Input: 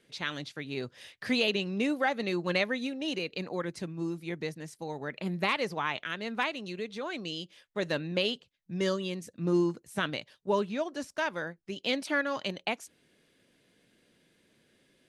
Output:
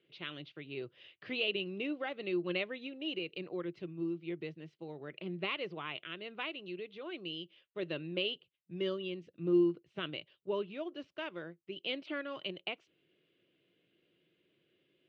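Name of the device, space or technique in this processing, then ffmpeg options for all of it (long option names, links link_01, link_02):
guitar cabinet: -af "highpass=97,equalizer=frequency=160:width_type=q:width=4:gain=3,equalizer=frequency=230:width_type=q:width=4:gain=-9,equalizer=frequency=350:width_type=q:width=4:gain=9,equalizer=frequency=870:width_type=q:width=4:gain=-8,equalizer=frequency=1700:width_type=q:width=4:gain=-6,equalizer=frequency=2900:width_type=q:width=4:gain=8,lowpass=frequency=3500:width=0.5412,lowpass=frequency=3500:width=1.3066,volume=-8.5dB"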